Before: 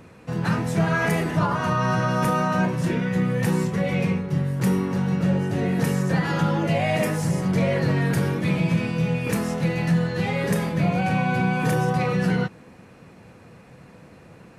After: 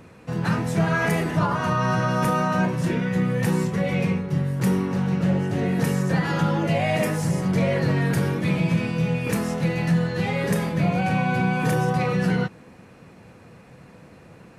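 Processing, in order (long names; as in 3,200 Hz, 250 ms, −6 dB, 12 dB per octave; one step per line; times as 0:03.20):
0:04.71–0:05.64: highs frequency-modulated by the lows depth 0.12 ms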